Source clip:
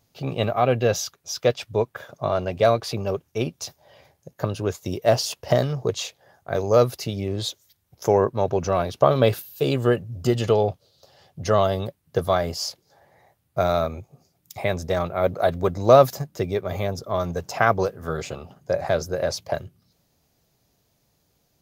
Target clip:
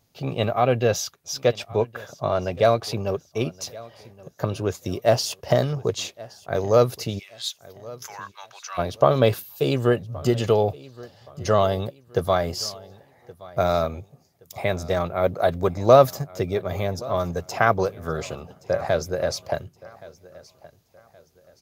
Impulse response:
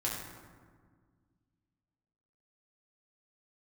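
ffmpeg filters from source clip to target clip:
-filter_complex "[0:a]asplit=3[link_01][link_02][link_03];[link_01]afade=type=out:start_time=7.18:duration=0.02[link_04];[link_02]highpass=frequency=1300:width=0.5412,highpass=frequency=1300:width=1.3066,afade=type=in:start_time=7.18:duration=0.02,afade=type=out:start_time=8.77:duration=0.02[link_05];[link_03]afade=type=in:start_time=8.77:duration=0.02[link_06];[link_04][link_05][link_06]amix=inputs=3:normalize=0,aecho=1:1:1122|2244|3366:0.0891|0.0303|0.0103"

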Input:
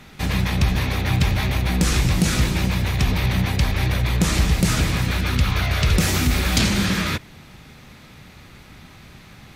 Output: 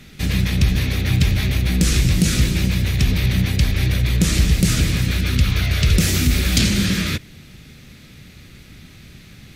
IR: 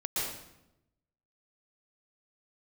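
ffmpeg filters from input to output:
-af "equalizer=frequency=910:width=1.1:gain=-14,volume=3dB"

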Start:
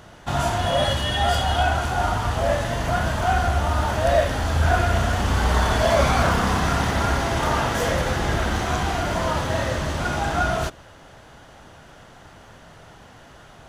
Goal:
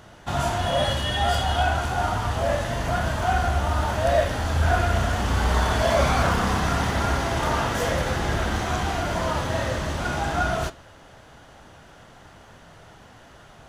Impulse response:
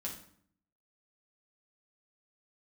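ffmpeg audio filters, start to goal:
-af "flanger=delay=9.3:depth=8.4:regen=-79:speed=0.46:shape=sinusoidal,volume=2.5dB"

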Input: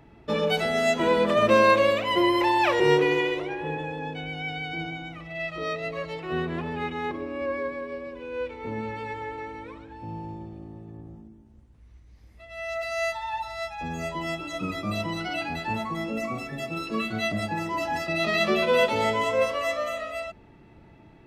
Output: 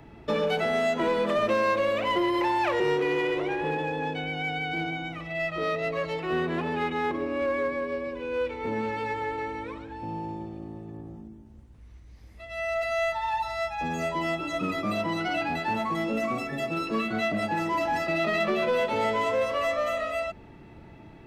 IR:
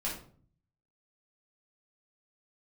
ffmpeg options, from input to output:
-filter_complex "[0:a]acrossover=split=180|2500[link_01][link_02][link_03];[link_01]acompressor=threshold=-49dB:ratio=4[link_04];[link_02]acompressor=threshold=-26dB:ratio=4[link_05];[link_03]acompressor=threshold=-47dB:ratio=4[link_06];[link_04][link_05][link_06]amix=inputs=3:normalize=0,asplit=2[link_07][link_08];[link_08]volume=29.5dB,asoftclip=hard,volume=-29.5dB,volume=-4.5dB[link_09];[link_07][link_09]amix=inputs=2:normalize=0"

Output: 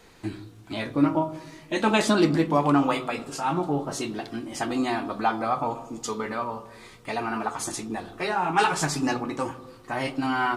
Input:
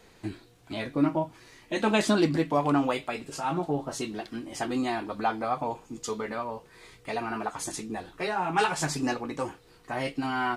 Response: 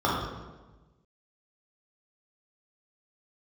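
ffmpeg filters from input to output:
-filter_complex "[0:a]bandreject=frequency=62.58:width_type=h:width=4,bandreject=frequency=125.16:width_type=h:width=4,bandreject=frequency=187.74:width_type=h:width=4,bandreject=frequency=250.32:width_type=h:width=4,bandreject=frequency=312.9:width_type=h:width=4,bandreject=frequency=375.48:width_type=h:width=4,bandreject=frequency=438.06:width_type=h:width=4,bandreject=frequency=500.64:width_type=h:width=4,bandreject=frequency=563.22:width_type=h:width=4,bandreject=frequency=625.8:width_type=h:width=4,bandreject=frequency=688.38:width_type=h:width=4,asplit=2[link_01][link_02];[1:a]atrim=start_sample=2205[link_03];[link_02][link_03]afir=irnorm=-1:irlink=0,volume=-28.5dB[link_04];[link_01][link_04]amix=inputs=2:normalize=0,volume=3dB"

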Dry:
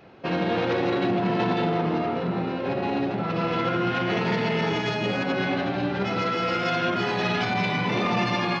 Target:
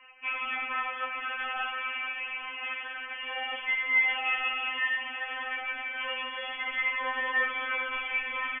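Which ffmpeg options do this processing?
ffmpeg -i in.wav -af "highpass=frequency=880:width=0.5412,highpass=frequency=880:width=1.3066,asoftclip=type=tanh:threshold=-31.5dB,lowpass=frequency=3000:width_type=q:width=0.5098,lowpass=frequency=3000:width_type=q:width=0.6013,lowpass=frequency=3000:width_type=q:width=0.9,lowpass=frequency=3000:width_type=q:width=2.563,afreqshift=-3500,aecho=1:1:863:0.188,afftfilt=real='re*3.46*eq(mod(b,12),0)':imag='im*3.46*eq(mod(b,12),0)':win_size=2048:overlap=0.75,volume=7dB" out.wav

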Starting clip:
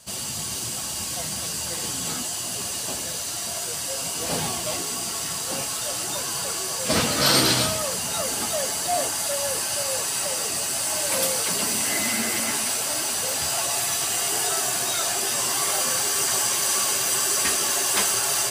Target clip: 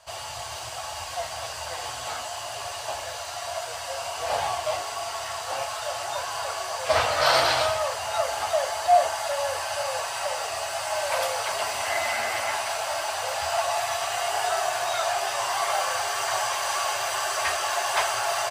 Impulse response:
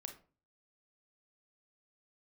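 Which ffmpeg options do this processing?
-filter_complex "[0:a]firequalizer=gain_entry='entry(100,0);entry(180,-23);entry(660,11);entry(1300,6);entry(3700,-1);entry(9300,-11)':delay=0.05:min_phase=1,asplit=2[link_01][link_02];[1:a]atrim=start_sample=2205[link_03];[link_02][link_03]afir=irnorm=-1:irlink=0,volume=3.5dB[link_04];[link_01][link_04]amix=inputs=2:normalize=0,volume=-8.5dB"

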